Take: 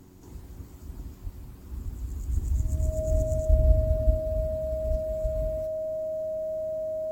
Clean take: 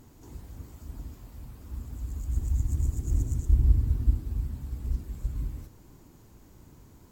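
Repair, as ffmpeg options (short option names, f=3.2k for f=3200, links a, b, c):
-filter_complex "[0:a]bandreject=f=92.2:t=h:w=4,bandreject=f=184.4:t=h:w=4,bandreject=f=276.6:t=h:w=4,bandreject=f=368.8:t=h:w=4,bandreject=f=630:w=30,asplit=3[a][b][c];[a]afade=t=out:st=1.23:d=0.02[d];[b]highpass=f=140:w=0.5412,highpass=f=140:w=1.3066,afade=t=in:st=1.23:d=0.02,afade=t=out:st=1.35:d=0.02[e];[c]afade=t=in:st=1.35:d=0.02[f];[d][e][f]amix=inputs=3:normalize=0,asplit=3[g][h][i];[g]afade=t=out:st=1.84:d=0.02[j];[h]highpass=f=140:w=0.5412,highpass=f=140:w=1.3066,afade=t=in:st=1.84:d=0.02,afade=t=out:st=1.96:d=0.02[k];[i]afade=t=in:st=1.96:d=0.02[l];[j][k][l]amix=inputs=3:normalize=0,asplit=3[m][n][o];[m]afade=t=out:st=2.32:d=0.02[p];[n]highpass=f=140:w=0.5412,highpass=f=140:w=1.3066,afade=t=in:st=2.32:d=0.02,afade=t=out:st=2.44:d=0.02[q];[o]afade=t=in:st=2.44:d=0.02[r];[p][q][r]amix=inputs=3:normalize=0"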